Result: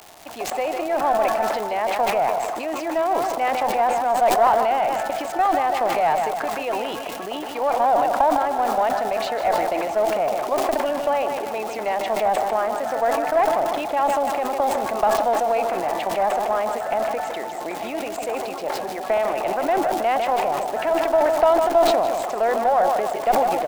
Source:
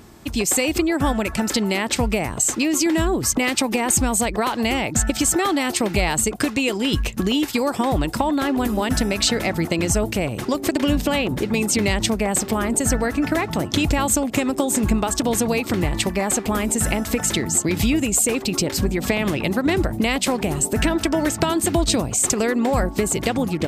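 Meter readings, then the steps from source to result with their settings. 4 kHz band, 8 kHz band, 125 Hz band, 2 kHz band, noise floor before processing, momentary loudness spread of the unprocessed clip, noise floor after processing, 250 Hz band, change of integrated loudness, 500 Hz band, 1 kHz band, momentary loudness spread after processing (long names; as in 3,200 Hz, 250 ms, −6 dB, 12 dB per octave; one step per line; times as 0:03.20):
−9.0 dB, −17.0 dB, −20.5 dB, −4.5 dB, −32 dBFS, 3 LU, −30 dBFS, −12.0 dB, −1.0 dB, +3.5 dB, +8.0 dB, 9 LU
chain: four-pole ladder band-pass 780 Hz, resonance 65%
surface crackle 430 per second −42 dBFS
in parallel at −6 dB: asymmetric clip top −35.5 dBFS
on the sum: repeating echo 154 ms, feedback 47%, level −9 dB
level that may fall only so fast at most 27 dB per second
level +7.5 dB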